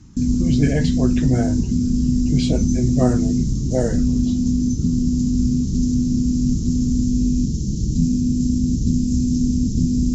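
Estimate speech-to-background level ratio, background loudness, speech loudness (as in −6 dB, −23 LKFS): −3.0 dB, −20.0 LKFS, −23.0 LKFS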